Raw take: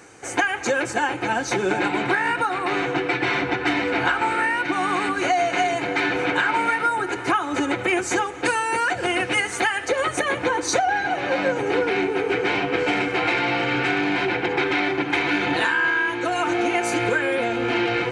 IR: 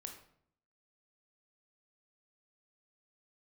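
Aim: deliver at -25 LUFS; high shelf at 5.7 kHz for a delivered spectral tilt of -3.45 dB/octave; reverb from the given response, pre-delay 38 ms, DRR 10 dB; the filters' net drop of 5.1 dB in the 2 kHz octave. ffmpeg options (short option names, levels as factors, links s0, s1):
-filter_complex "[0:a]equalizer=f=2000:t=o:g=-7.5,highshelf=f=5700:g=6,asplit=2[s0][s1];[1:a]atrim=start_sample=2205,adelay=38[s2];[s1][s2]afir=irnorm=-1:irlink=0,volume=0.501[s3];[s0][s3]amix=inputs=2:normalize=0,volume=0.841"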